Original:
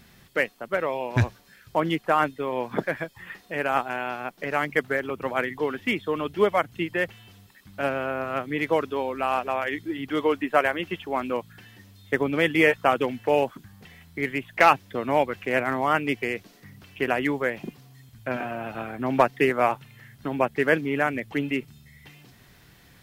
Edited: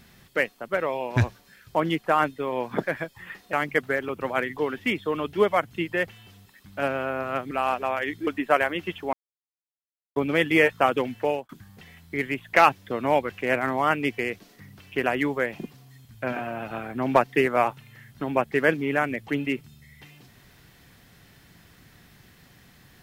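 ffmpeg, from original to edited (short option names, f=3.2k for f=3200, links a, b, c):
-filter_complex "[0:a]asplit=7[a][b][c][d][e][f][g];[a]atrim=end=3.532[h];[b]atrim=start=4.538:end=8.522[i];[c]atrim=start=9.158:end=9.922[j];[d]atrim=start=10.308:end=11.17,asetpts=PTS-STARTPTS,afade=t=out:st=0.858:d=0.004:c=hsin[k];[e]atrim=start=11.17:end=12.2,asetpts=PTS-STARTPTS,volume=0[l];[f]atrim=start=12.2:end=13.53,asetpts=PTS-STARTPTS,afade=t=in:d=0.004:c=hsin,afade=t=out:st=1.03:d=0.3[m];[g]atrim=start=13.53,asetpts=PTS-STARTPTS,afade=t=in:d=0.004:c=hsin[n];[h][i]acrossfade=d=0.004:c1=hsin:c2=hsin[o];[o][j]acrossfade=d=0.004:c1=hsin:c2=hsin[p];[k][l][m][n]concat=n=4:v=0:a=1[q];[p][q]acrossfade=d=0.004:c1=hsin:c2=hsin"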